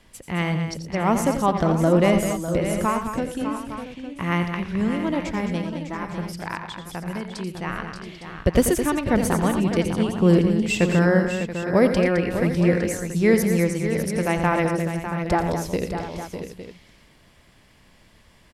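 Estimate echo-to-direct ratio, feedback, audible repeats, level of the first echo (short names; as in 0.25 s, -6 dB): -3.5 dB, no steady repeat, 6, -10.0 dB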